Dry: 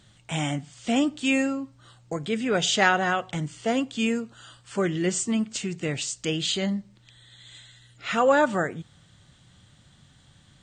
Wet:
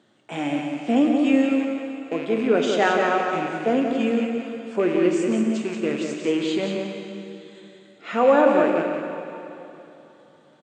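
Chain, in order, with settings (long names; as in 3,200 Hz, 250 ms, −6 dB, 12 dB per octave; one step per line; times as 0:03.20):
loose part that buzzes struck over −38 dBFS, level −22 dBFS
high-pass filter 290 Hz 24 dB per octave
spectral tilt −4.5 dB per octave
single-tap delay 181 ms −6 dB
dense smooth reverb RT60 3.1 s, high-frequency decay 0.85×, DRR 3.5 dB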